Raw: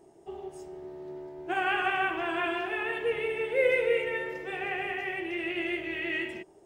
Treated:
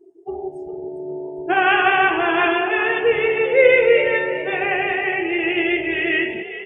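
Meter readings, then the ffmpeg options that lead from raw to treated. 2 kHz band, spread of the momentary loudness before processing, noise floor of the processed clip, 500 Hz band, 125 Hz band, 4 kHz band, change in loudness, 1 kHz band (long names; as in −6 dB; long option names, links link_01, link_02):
+12.0 dB, 16 LU, −35 dBFS, +12.5 dB, +10.0 dB, +11.5 dB, +12.0 dB, +12.5 dB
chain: -filter_complex "[0:a]acontrast=71,afftdn=noise_reduction=29:noise_floor=-37,asplit=4[link_01][link_02][link_03][link_04];[link_02]adelay=404,afreqshift=50,volume=-13dB[link_05];[link_03]adelay=808,afreqshift=100,volume=-22.1dB[link_06];[link_04]adelay=1212,afreqshift=150,volume=-31.2dB[link_07];[link_01][link_05][link_06][link_07]amix=inputs=4:normalize=0,volume=5.5dB"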